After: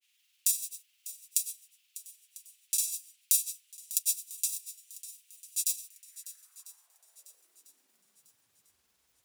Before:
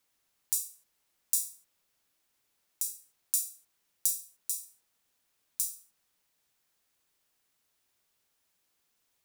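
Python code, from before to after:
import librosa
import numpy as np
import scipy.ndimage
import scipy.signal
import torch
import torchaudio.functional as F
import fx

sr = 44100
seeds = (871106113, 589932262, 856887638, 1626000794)

y = fx.filter_sweep_highpass(x, sr, from_hz=2800.0, to_hz=61.0, start_s=5.89, end_s=8.97, q=3.2)
y = fx.granulator(y, sr, seeds[0], grain_ms=100.0, per_s=20.0, spray_ms=100.0, spread_st=0)
y = fx.echo_swing(y, sr, ms=997, ratio=1.5, feedback_pct=34, wet_db=-16.0)
y = F.gain(torch.from_numpy(y), 5.5).numpy()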